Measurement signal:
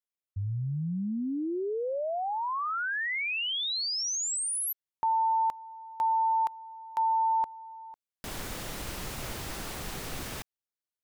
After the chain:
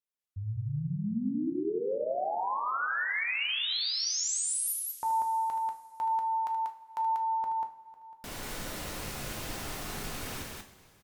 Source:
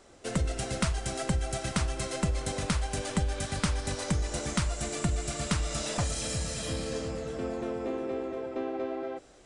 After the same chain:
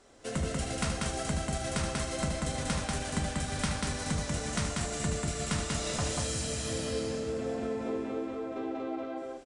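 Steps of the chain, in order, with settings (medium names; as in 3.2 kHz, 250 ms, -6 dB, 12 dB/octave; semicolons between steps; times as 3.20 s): loudspeakers at several distances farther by 26 m -9 dB, 65 m -2 dB; two-slope reverb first 0.35 s, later 2.9 s, from -18 dB, DRR 4 dB; one-sided clip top -15 dBFS, bottom -14 dBFS; trim -4 dB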